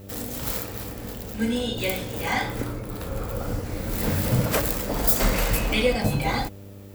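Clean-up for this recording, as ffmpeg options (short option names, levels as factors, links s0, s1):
-af "bandreject=f=99.3:t=h:w=4,bandreject=f=198.6:t=h:w=4,bandreject=f=297.9:t=h:w=4,bandreject=f=397.2:t=h:w=4,bandreject=f=496.5:t=h:w=4,bandreject=f=595.8:t=h:w=4"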